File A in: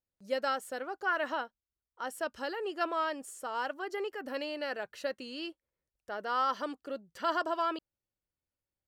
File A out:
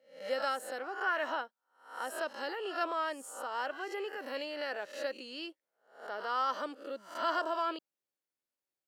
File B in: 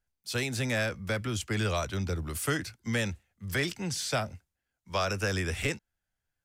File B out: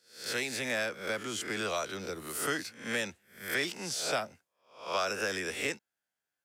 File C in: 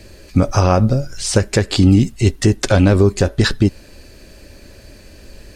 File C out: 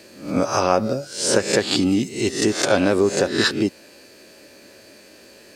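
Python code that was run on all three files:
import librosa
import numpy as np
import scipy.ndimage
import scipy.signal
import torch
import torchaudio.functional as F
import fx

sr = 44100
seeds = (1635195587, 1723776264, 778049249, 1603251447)

y = fx.spec_swells(x, sr, rise_s=0.46)
y = scipy.signal.sosfilt(scipy.signal.butter(2, 280.0, 'highpass', fs=sr, output='sos'), y)
y = F.gain(torch.from_numpy(y), -2.5).numpy()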